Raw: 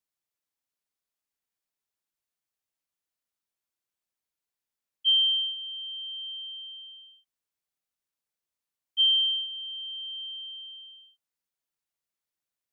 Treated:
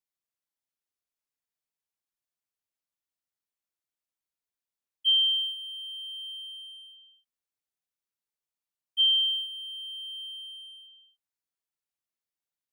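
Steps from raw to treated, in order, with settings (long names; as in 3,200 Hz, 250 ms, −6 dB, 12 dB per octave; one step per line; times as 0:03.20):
in parallel at −3 dB: dead-zone distortion −45 dBFS
on the sum: level −5 dB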